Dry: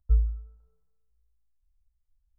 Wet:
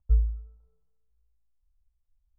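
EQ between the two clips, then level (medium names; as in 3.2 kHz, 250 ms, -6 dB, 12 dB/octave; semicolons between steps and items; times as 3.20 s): low-pass 1.2 kHz 24 dB/octave; 0.0 dB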